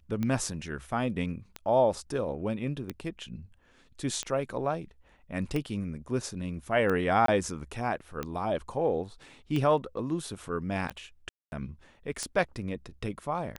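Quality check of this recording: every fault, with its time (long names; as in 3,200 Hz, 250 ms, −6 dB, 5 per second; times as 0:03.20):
scratch tick 45 rpm −19 dBFS
0:07.26–0:07.28: drop-out 23 ms
0:11.29–0:11.52: drop-out 231 ms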